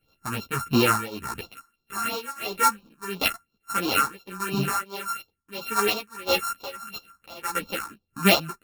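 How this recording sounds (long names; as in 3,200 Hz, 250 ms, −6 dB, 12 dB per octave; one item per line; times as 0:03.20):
a buzz of ramps at a fixed pitch in blocks of 32 samples
phaser sweep stages 4, 2.9 Hz, lowest notch 490–1,800 Hz
tremolo triangle 1.6 Hz, depth 95%
a shimmering, thickened sound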